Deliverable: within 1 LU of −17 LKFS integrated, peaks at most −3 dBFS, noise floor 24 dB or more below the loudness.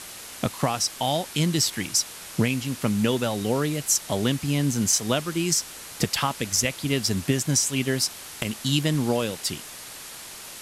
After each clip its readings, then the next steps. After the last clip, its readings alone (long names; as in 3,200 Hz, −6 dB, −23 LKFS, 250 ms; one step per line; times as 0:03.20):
background noise floor −41 dBFS; target noise floor −49 dBFS; integrated loudness −24.5 LKFS; sample peak −9.0 dBFS; target loudness −17.0 LKFS
→ broadband denoise 8 dB, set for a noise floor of −41 dBFS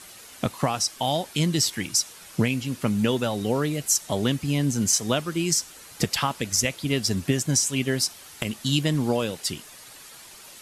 background noise floor −46 dBFS; target noise floor −49 dBFS
→ broadband denoise 6 dB, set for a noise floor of −46 dBFS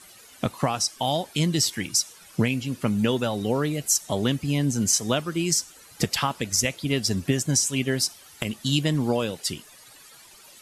background noise floor −50 dBFS; integrated loudness −24.5 LKFS; sample peak −9.0 dBFS; target loudness −17.0 LKFS
→ level +7.5 dB
brickwall limiter −3 dBFS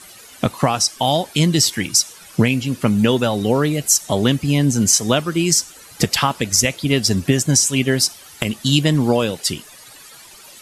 integrated loudness −17.5 LKFS; sample peak −3.0 dBFS; background noise floor −43 dBFS